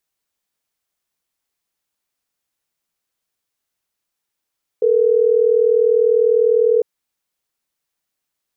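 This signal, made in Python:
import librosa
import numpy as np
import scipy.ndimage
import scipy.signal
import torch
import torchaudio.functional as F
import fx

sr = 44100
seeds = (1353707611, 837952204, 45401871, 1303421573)

y = fx.call_progress(sr, length_s=3.12, kind='ringback tone', level_db=-14.0)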